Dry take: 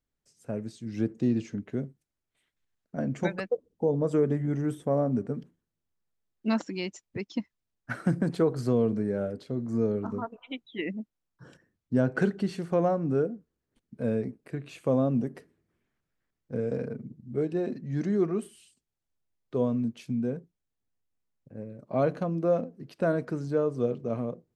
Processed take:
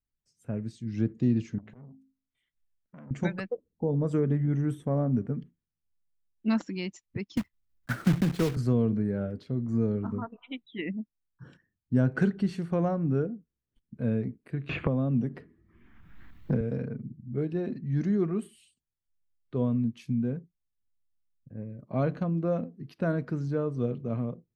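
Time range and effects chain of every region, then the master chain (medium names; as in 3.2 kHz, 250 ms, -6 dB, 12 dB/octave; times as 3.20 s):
1.58–3.11 s: de-hum 53.38 Hz, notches 6 + compression 8:1, threshold -41 dBFS + transformer saturation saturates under 970 Hz
7.37–8.57 s: block-companded coder 3-bit + treble shelf 4.6 kHz -3 dB + three bands compressed up and down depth 40%
14.69–16.61 s: treble shelf 4.9 kHz -7 dB + three bands compressed up and down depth 100%
whole clip: treble shelf 2.2 kHz -11.5 dB; spectral noise reduction 9 dB; peaking EQ 550 Hz -11.5 dB 2.6 oct; trim +7 dB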